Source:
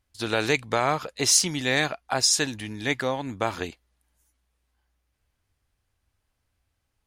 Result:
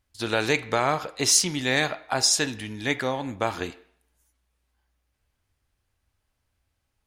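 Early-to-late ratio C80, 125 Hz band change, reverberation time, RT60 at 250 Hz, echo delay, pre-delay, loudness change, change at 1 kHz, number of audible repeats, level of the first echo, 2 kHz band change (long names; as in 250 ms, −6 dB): 19.5 dB, 0.0 dB, 0.60 s, 0.55 s, no echo audible, 3 ms, 0.0 dB, +0.5 dB, no echo audible, no echo audible, +0.5 dB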